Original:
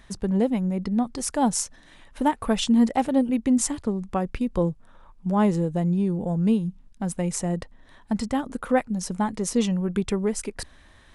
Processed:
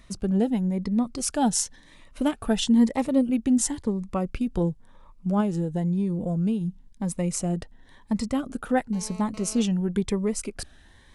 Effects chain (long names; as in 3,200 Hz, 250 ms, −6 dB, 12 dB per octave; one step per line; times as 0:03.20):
0:01.17–0:02.37: dynamic equaliser 3,400 Hz, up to +4 dB, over −43 dBFS, Q 0.72
0:05.40–0:06.61: downward compressor, threshold −21 dBFS, peak gain reduction 6 dB
0:08.93–0:09.62: phone interference −43 dBFS
phaser whose notches keep moving one way rising 0.97 Hz